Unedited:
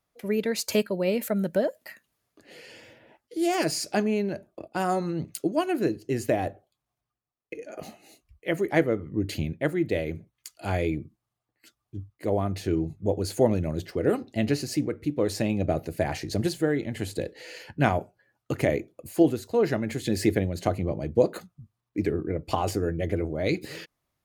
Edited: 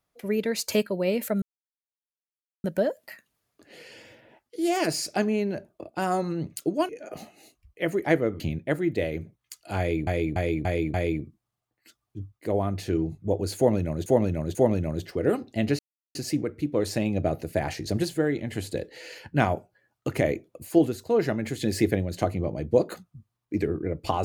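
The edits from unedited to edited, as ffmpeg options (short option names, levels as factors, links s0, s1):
-filter_complex "[0:a]asplit=11[s0][s1][s2][s3][s4][s5][s6][s7][s8][s9][s10];[s0]atrim=end=1.42,asetpts=PTS-STARTPTS,afade=t=out:st=1.416:d=0.004:c=hsin,apad=pad_dur=1.22[s11];[s1]atrim=start=1.42:end=5.672,asetpts=PTS-STARTPTS,afade=t=in:d=0.004:c=hsin[s12];[s2]atrim=start=7.548:end=9.062[s13];[s3]atrim=start=9.338:end=11.012[s14];[s4]atrim=start=10.718:end=11.012[s15];[s5]atrim=start=10.718:end=11.012[s16];[s6]atrim=start=10.718:end=11.012[s17];[s7]atrim=start=10.718:end=13.842[s18];[s8]atrim=start=13.348:end=13.842[s19];[s9]atrim=start=13.348:end=14.59,asetpts=PTS-STARTPTS,afade=t=out:st=1.238:d=0.004:c=hsin,apad=pad_dur=0.36[s20];[s10]atrim=start=14.59,asetpts=PTS-STARTPTS,afade=t=in:d=0.004:c=hsin[s21];[s11][s12]concat=n=2:v=0:a=1[s22];[s22][s13]acrossfade=d=0.004:c1=hsin:c2=hsin[s23];[s23][s14]acrossfade=d=0.004:c1=hsin:c2=hsin[s24];[s24][s15]acrossfade=d=0.004:c1=hsin:c2=hsin[s25];[s25][s16]acrossfade=d=0.004:c1=hsin:c2=hsin[s26];[s26][s17]acrossfade=d=0.004:c1=hsin:c2=hsin[s27];[s27][s18]acrossfade=d=0.004:c1=hsin:c2=hsin[s28];[s28][s19]acrossfade=d=0.004:c1=hsin:c2=hsin[s29];[s20][s21]concat=n=2:v=0:a=1[s30];[s29][s30]acrossfade=d=0.004:c1=hsin:c2=hsin"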